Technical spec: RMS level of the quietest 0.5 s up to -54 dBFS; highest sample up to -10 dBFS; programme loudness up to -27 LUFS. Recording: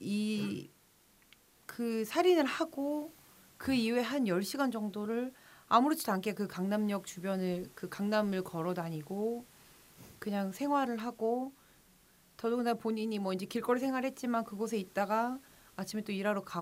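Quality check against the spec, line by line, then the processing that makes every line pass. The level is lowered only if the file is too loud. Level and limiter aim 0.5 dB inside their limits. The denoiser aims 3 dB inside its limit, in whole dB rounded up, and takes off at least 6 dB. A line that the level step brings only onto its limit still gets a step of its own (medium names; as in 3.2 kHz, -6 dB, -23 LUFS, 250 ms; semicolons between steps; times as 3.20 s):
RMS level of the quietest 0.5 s -66 dBFS: pass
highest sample -13.0 dBFS: pass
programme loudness -34.0 LUFS: pass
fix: none needed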